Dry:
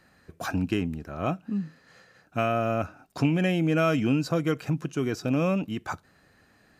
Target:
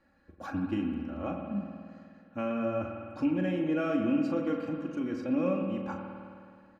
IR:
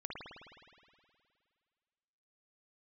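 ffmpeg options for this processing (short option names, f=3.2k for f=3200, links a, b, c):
-filter_complex "[0:a]lowpass=f=1.3k:p=1,aecho=1:1:3.6:0.87,asplit=2[a][b];[1:a]atrim=start_sample=2205,adelay=39[c];[b][c]afir=irnorm=-1:irlink=0,volume=-2dB[d];[a][d]amix=inputs=2:normalize=0,volume=-8dB"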